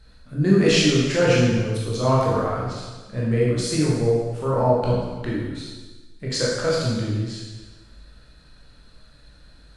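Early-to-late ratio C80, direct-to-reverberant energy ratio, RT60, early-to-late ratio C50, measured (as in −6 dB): 1.5 dB, −6.5 dB, 1.3 s, −0.5 dB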